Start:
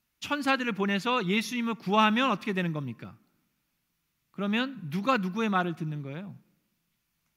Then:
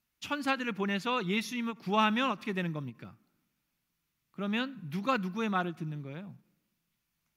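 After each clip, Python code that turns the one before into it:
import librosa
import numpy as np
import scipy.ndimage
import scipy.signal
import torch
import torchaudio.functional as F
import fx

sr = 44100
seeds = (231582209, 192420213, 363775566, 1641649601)

y = fx.end_taper(x, sr, db_per_s=330.0)
y = y * 10.0 ** (-4.0 / 20.0)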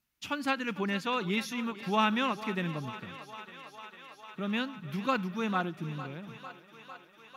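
y = fx.echo_thinned(x, sr, ms=451, feedback_pct=82, hz=280.0, wet_db=-14.5)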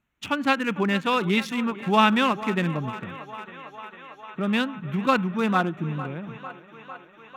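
y = fx.wiener(x, sr, points=9)
y = y * 10.0 ** (8.5 / 20.0)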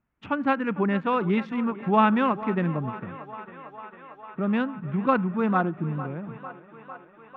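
y = scipy.signal.sosfilt(scipy.signal.butter(2, 1500.0, 'lowpass', fs=sr, output='sos'), x)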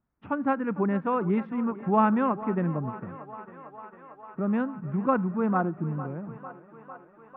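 y = scipy.signal.sosfilt(scipy.signal.butter(2, 1400.0, 'lowpass', fs=sr, output='sos'), x)
y = y * 10.0 ** (-1.5 / 20.0)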